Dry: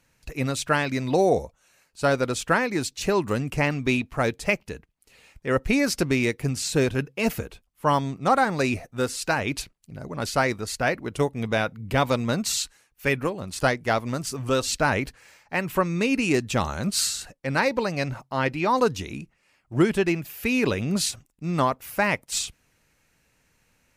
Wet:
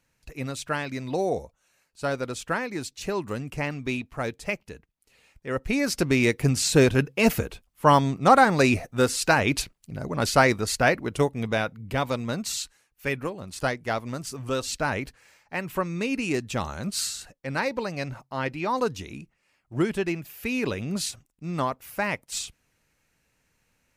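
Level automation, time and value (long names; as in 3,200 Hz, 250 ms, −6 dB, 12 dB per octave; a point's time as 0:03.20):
0:05.52 −6 dB
0:06.41 +4 dB
0:10.74 +4 dB
0:12.01 −4.5 dB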